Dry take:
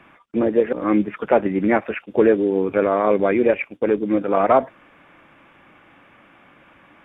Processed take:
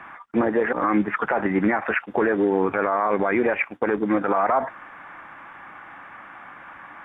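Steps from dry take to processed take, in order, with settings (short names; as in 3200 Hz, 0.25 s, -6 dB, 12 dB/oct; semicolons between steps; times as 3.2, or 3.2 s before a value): band shelf 1200 Hz +12 dB; limiter -11.5 dBFS, peak gain reduction 16.5 dB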